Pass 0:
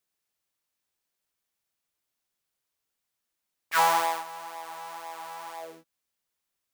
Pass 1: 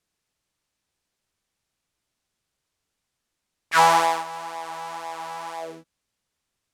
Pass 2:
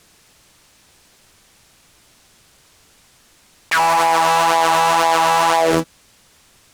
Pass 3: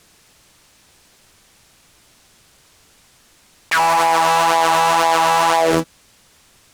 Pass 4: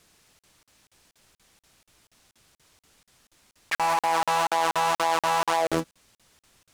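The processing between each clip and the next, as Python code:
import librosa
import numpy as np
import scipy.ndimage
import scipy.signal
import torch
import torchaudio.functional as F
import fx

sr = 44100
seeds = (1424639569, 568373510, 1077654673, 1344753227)

y1 = scipy.signal.sosfilt(scipy.signal.butter(2, 9200.0, 'lowpass', fs=sr, output='sos'), x)
y1 = fx.low_shelf(y1, sr, hz=230.0, db=9.5)
y1 = F.gain(torch.from_numpy(y1), 5.5).numpy()
y2 = fx.leveller(y1, sr, passes=3)
y2 = fx.env_flatten(y2, sr, amount_pct=100)
y2 = F.gain(torch.from_numpy(y2), -6.5).numpy()
y3 = y2
y4 = fx.buffer_crackle(y3, sr, first_s=0.39, period_s=0.24, block=2048, kind='zero')
y4 = F.gain(torch.from_numpy(y4), -8.5).numpy()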